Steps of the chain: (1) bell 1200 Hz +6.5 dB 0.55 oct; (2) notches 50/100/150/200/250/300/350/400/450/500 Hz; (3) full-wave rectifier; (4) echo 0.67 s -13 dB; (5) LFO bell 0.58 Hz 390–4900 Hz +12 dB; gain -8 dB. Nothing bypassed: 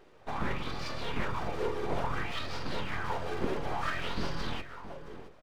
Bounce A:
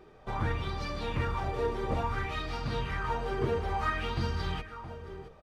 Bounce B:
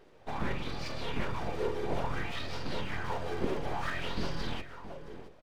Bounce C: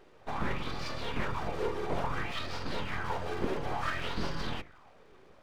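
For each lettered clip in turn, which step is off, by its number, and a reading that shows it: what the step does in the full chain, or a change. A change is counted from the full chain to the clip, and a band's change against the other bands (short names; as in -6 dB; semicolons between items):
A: 3, 125 Hz band +6.0 dB; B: 1, 1 kHz band -2.5 dB; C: 4, momentary loudness spread change -4 LU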